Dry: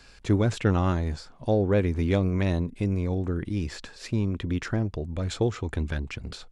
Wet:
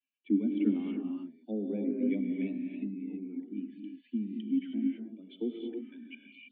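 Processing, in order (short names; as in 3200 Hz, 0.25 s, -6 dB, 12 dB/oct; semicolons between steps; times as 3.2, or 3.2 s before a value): per-bin expansion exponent 2; steep high-pass 200 Hz 96 dB/oct; treble ducked by the level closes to 1600 Hz, closed at -24 dBFS; vocal tract filter i; non-linear reverb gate 0.35 s rising, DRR 0.5 dB; gain +5.5 dB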